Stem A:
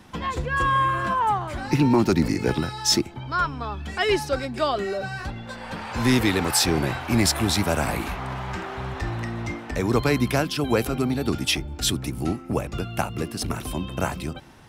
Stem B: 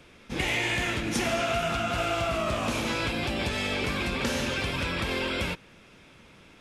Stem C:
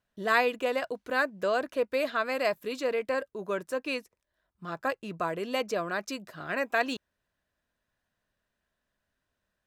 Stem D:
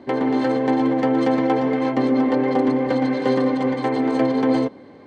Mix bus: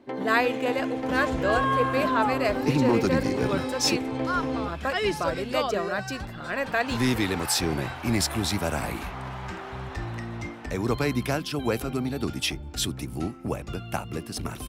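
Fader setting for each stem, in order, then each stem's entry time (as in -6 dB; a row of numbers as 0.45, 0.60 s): -4.5, -17.0, +1.5, -11.0 dB; 0.95, 0.00, 0.00, 0.00 s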